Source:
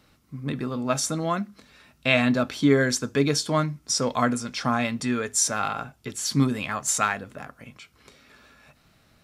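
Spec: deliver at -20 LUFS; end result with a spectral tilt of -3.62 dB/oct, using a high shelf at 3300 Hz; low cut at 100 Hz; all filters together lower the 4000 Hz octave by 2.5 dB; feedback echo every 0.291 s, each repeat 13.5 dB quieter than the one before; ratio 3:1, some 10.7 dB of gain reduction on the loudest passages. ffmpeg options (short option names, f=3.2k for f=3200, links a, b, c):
-af "highpass=100,highshelf=f=3.3k:g=4,equalizer=f=4k:t=o:g=-7.5,acompressor=threshold=-30dB:ratio=3,aecho=1:1:291|582:0.211|0.0444,volume=12.5dB"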